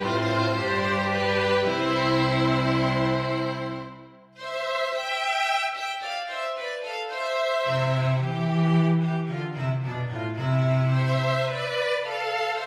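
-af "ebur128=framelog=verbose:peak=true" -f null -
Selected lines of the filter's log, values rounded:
Integrated loudness:
  I:         -25.1 LUFS
  Threshold: -35.2 LUFS
Loudness range:
  LRA:         4.3 LU
  Threshold: -45.5 LUFS
  LRA low:   -27.8 LUFS
  LRA high:  -23.5 LUFS
True peak:
  Peak:      -11.4 dBFS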